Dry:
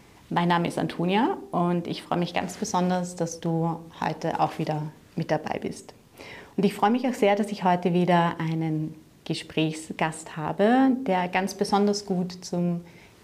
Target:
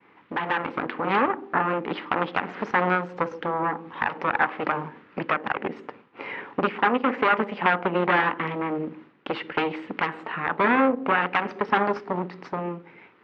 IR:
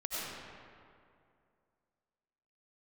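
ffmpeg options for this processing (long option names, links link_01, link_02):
-filter_complex "[0:a]aeval=exprs='0.335*(cos(1*acos(clip(val(0)/0.335,-1,1)))-cos(1*PI/2))+0.0376*(cos(3*acos(clip(val(0)/0.335,-1,1)))-cos(3*PI/2))+0.133*(cos(4*acos(clip(val(0)/0.335,-1,1)))-cos(4*PI/2))':channel_layout=same,asplit=2[link_01][link_02];[link_02]acompressor=threshold=-33dB:ratio=6,volume=3dB[link_03];[link_01][link_03]amix=inputs=2:normalize=0,alimiter=limit=-10dB:level=0:latency=1:release=109,highpass=310,equalizer=frequency=400:width_type=q:width=4:gain=-3,equalizer=frequency=650:width_type=q:width=4:gain=-9,equalizer=frequency=1300:width_type=q:width=4:gain=4,lowpass=frequency=2500:width=0.5412,lowpass=frequency=2500:width=1.3066,agate=range=-33dB:threshold=-49dB:ratio=3:detection=peak,dynaudnorm=framelen=150:gausssize=11:maxgain=5.5dB"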